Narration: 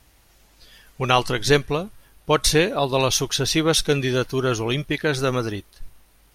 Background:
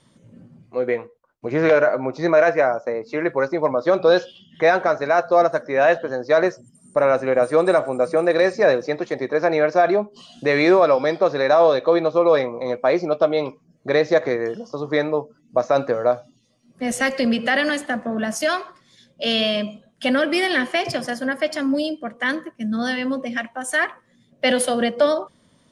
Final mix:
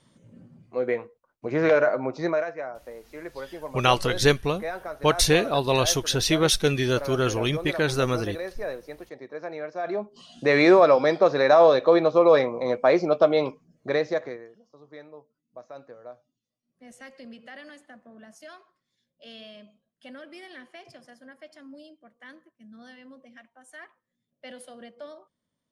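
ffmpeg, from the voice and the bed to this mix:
ffmpeg -i stem1.wav -i stem2.wav -filter_complex "[0:a]adelay=2750,volume=-2dB[link_01];[1:a]volume=11.5dB,afade=type=out:start_time=2.18:duration=0.29:silence=0.237137,afade=type=in:start_time=9.78:duration=0.78:silence=0.16788,afade=type=out:start_time=13.46:duration=1.02:silence=0.0668344[link_02];[link_01][link_02]amix=inputs=2:normalize=0" out.wav

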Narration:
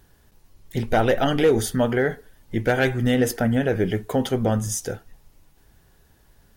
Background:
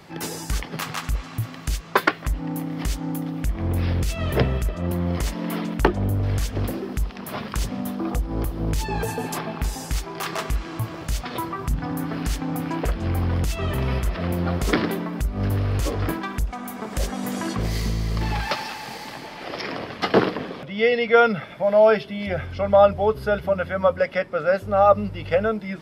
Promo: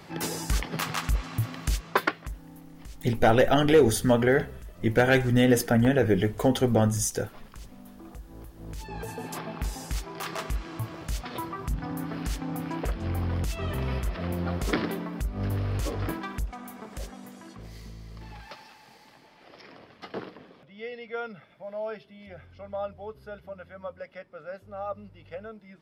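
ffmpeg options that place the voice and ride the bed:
ffmpeg -i stem1.wav -i stem2.wav -filter_complex "[0:a]adelay=2300,volume=-0.5dB[link_01];[1:a]volume=12.5dB,afade=type=out:start_time=1.65:duration=0.78:silence=0.11885,afade=type=in:start_time=8.55:duration=1.02:silence=0.211349,afade=type=out:start_time=16.31:duration=1.04:silence=0.223872[link_02];[link_01][link_02]amix=inputs=2:normalize=0" out.wav

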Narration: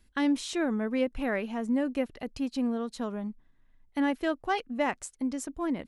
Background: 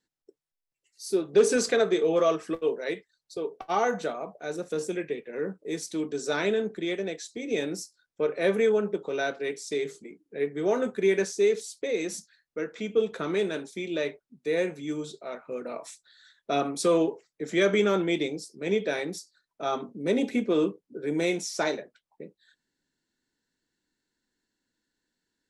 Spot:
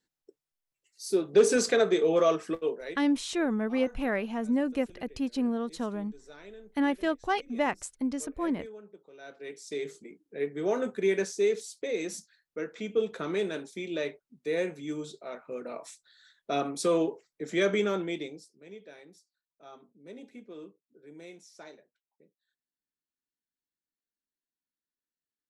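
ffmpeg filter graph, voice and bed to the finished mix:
ffmpeg -i stem1.wav -i stem2.wav -filter_complex "[0:a]adelay=2800,volume=0.5dB[link_01];[1:a]volume=18.5dB,afade=type=out:start_time=2.46:duration=0.68:silence=0.0841395,afade=type=in:start_time=9.19:duration=0.78:silence=0.112202,afade=type=out:start_time=17.67:duration=1.01:silence=0.125893[link_02];[link_01][link_02]amix=inputs=2:normalize=0" out.wav

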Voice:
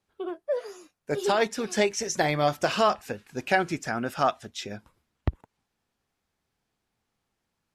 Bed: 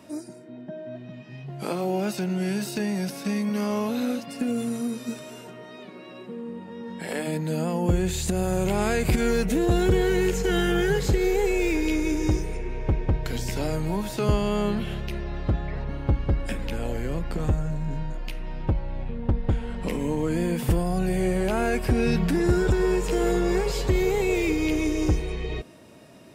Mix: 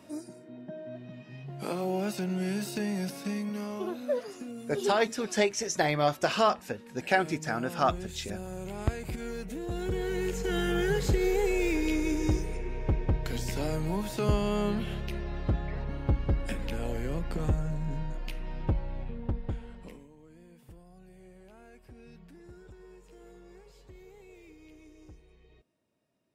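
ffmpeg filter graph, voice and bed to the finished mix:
ffmpeg -i stem1.wav -i stem2.wav -filter_complex "[0:a]adelay=3600,volume=-2dB[link_01];[1:a]volume=6dB,afade=type=out:start_time=3.08:duration=0.85:silence=0.316228,afade=type=in:start_time=9.63:duration=1.42:silence=0.298538,afade=type=out:start_time=18.78:duration=1.3:silence=0.0530884[link_02];[link_01][link_02]amix=inputs=2:normalize=0" out.wav

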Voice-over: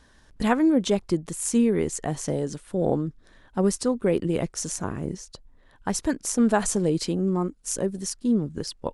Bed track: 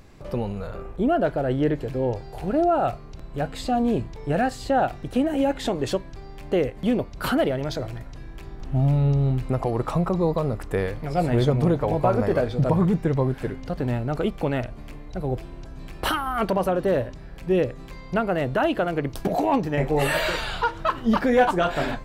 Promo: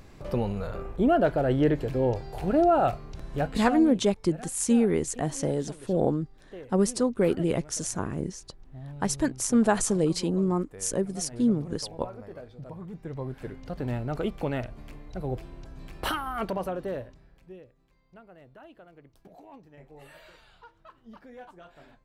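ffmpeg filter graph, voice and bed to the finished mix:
ffmpeg -i stem1.wav -i stem2.wav -filter_complex "[0:a]adelay=3150,volume=-1dB[link_01];[1:a]volume=15.5dB,afade=type=out:start_time=3.37:duration=0.61:silence=0.0944061,afade=type=in:start_time=12.87:duration=1.1:silence=0.158489,afade=type=out:start_time=16.09:duration=1.5:silence=0.0707946[link_02];[link_01][link_02]amix=inputs=2:normalize=0" out.wav

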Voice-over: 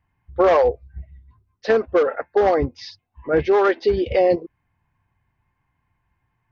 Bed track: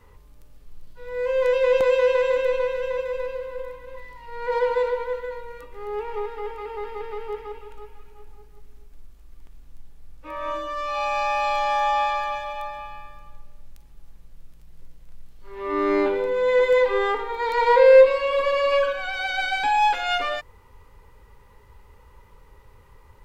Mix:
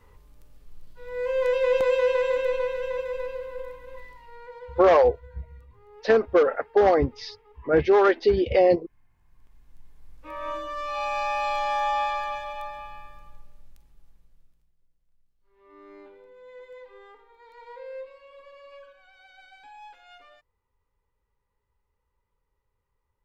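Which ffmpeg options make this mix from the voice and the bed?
ffmpeg -i stem1.wav -i stem2.wav -filter_complex "[0:a]adelay=4400,volume=-1.5dB[link_01];[1:a]volume=14dB,afade=type=out:start_time=4.03:duration=0.5:silence=0.133352,afade=type=in:start_time=9.13:duration=1.05:silence=0.141254,afade=type=out:start_time=13.2:duration=1.56:silence=0.0668344[link_02];[link_01][link_02]amix=inputs=2:normalize=0" out.wav

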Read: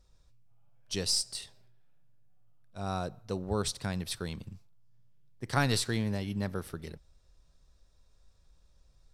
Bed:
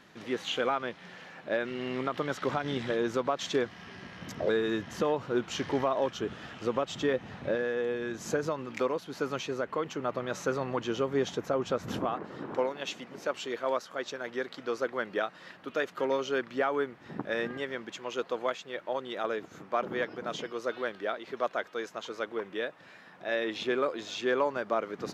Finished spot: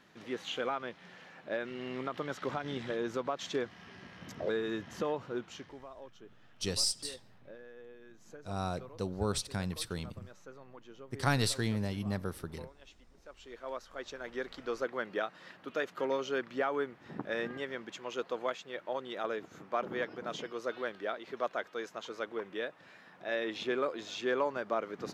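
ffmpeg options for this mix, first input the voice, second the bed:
ffmpeg -i stem1.wav -i stem2.wav -filter_complex "[0:a]adelay=5700,volume=-1.5dB[link_01];[1:a]volume=12dB,afade=type=out:start_time=5.17:duration=0.58:silence=0.16788,afade=type=in:start_time=13.28:duration=1.21:silence=0.133352[link_02];[link_01][link_02]amix=inputs=2:normalize=0" out.wav

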